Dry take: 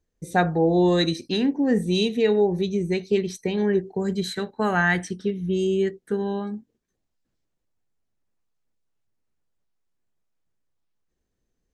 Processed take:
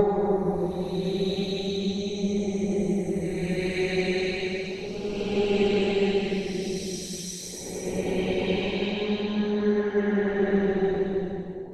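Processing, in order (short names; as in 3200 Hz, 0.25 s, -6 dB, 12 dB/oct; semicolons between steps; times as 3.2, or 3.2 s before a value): added harmonics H 4 -19 dB, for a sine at -8.5 dBFS; Paulstretch 8.2×, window 0.25 s, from 2.45; harmonic-percussive split harmonic -11 dB; gain +7 dB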